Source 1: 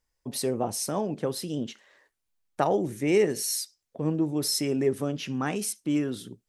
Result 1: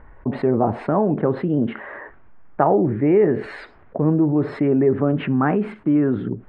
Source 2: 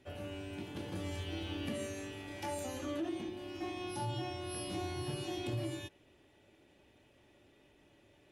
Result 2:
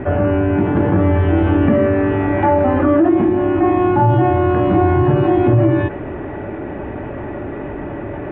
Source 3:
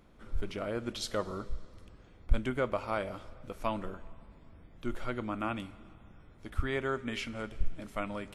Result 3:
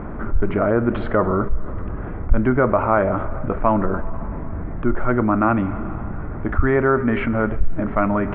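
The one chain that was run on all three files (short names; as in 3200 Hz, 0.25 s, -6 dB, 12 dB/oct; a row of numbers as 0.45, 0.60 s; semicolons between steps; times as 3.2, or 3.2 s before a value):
inverse Chebyshev low-pass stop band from 5400 Hz, stop band 60 dB; notch 510 Hz, Q 12; fast leveller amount 50%; normalise peaks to -3 dBFS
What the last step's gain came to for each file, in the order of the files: +6.0, +24.0, +9.5 dB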